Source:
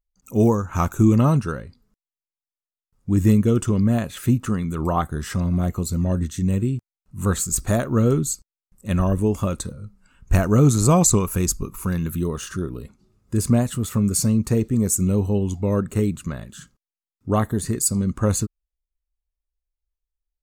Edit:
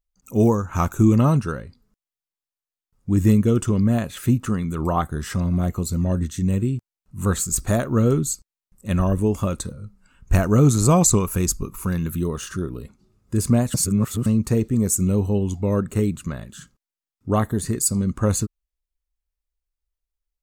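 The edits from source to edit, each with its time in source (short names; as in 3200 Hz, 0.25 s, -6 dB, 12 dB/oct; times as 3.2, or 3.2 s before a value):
13.74–14.26 reverse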